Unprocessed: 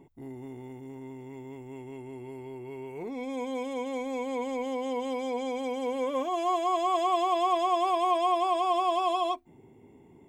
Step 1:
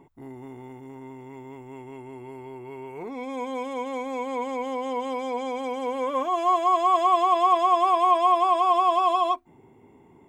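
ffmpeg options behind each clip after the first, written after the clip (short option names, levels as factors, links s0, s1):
-af "equalizer=f=1200:w=1.1:g=9"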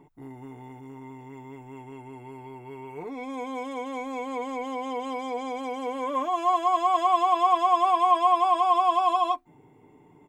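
-af "aecho=1:1:6.7:0.48,volume=0.794"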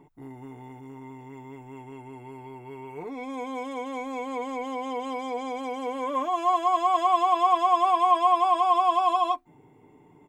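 -af anull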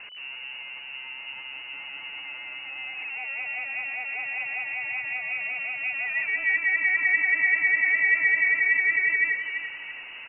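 -af "aeval=exprs='val(0)+0.5*0.0168*sgn(val(0))':c=same,lowpass=f=2600:t=q:w=0.5098,lowpass=f=2600:t=q:w=0.6013,lowpass=f=2600:t=q:w=0.9,lowpass=f=2600:t=q:w=2.563,afreqshift=-3000,aecho=1:1:337|674|1011|1348:0.355|0.131|0.0486|0.018,volume=0.794"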